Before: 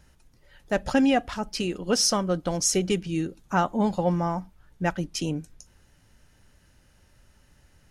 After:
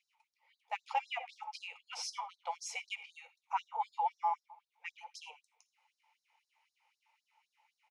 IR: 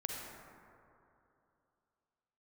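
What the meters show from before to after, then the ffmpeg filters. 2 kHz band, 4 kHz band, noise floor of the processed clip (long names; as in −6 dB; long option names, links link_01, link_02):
−11.0 dB, −15.0 dB, below −85 dBFS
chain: -filter_complex "[0:a]asplit=3[link_01][link_02][link_03];[link_01]bandpass=frequency=300:width_type=q:width=8,volume=0dB[link_04];[link_02]bandpass=frequency=870:width_type=q:width=8,volume=-6dB[link_05];[link_03]bandpass=frequency=2240:width_type=q:width=8,volume=-9dB[link_06];[link_04][link_05][link_06]amix=inputs=3:normalize=0,asplit=2[link_07][link_08];[link_08]adelay=83,lowpass=frequency=1600:poles=1,volume=-14dB,asplit=2[link_09][link_10];[link_10]adelay=83,lowpass=frequency=1600:poles=1,volume=0.48,asplit=2[link_11][link_12];[link_12]adelay=83,lowpass=frequency=1600:poles=1,volume=0.48,asplit=2[link_13][link_14];[link_14]adelay=83,lowpass=frequency=1600:poles=1,volume=0.48,asplit=2[link_15][link_16];[link_16]adelay=83,lowpass=frequency=1600:poles=1,volume=0.48[link_17];[link_07][link_09][link_11][link_13][link_15][link_17]amix=inputs=6:normalize=0,asplit=2[link_18][link_19];[1:a]atrim=start_sample=2205,atrim=end_sample=3969,asetrate=39249,aresample=44100[link_20];[link_19][link_20]afir=irnorm=-1:irlink=0,volume=-7dB[link_21];[link_18][link_21]amix=inputs=2:normalize=0,afftfilt=real='re*gte(b*sr/1024,470*pow(3900/470,0.5+0.5*sin(2*PI*3.9*pts/sr)))':imag='im*gte(b*sr/1024,470*pow(3900/470,0.5+0.5*sin(2*PI*3.9*pts/sr)))':win_size=1024:overlap=0.75,volume=7.5dB"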